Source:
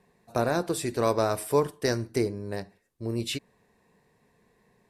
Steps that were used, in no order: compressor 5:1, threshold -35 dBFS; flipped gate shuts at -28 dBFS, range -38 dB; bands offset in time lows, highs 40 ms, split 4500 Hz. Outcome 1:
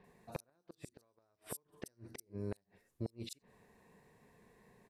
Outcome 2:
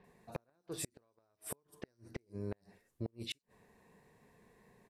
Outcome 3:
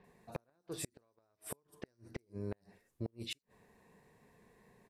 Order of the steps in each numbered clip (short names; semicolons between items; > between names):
compressor > flipped gate > bands offset in time; bands offset in time > compressor > flipped gate; compressor > bands offset in time > flipped gate